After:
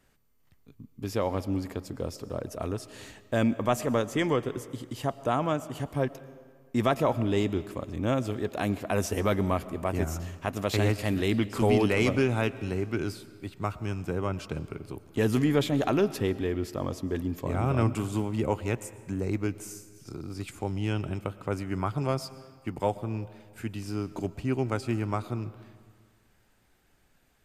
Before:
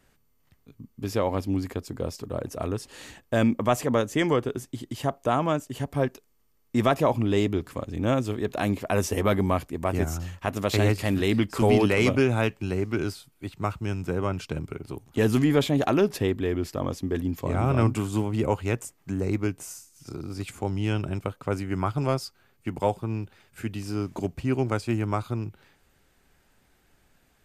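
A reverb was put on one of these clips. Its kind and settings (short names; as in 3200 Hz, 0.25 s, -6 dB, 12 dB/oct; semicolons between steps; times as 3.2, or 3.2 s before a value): digital reverb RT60 1.8 s, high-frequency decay 0.75×, pre-delay 75 ms, DRR 16 dB; gain -3 dB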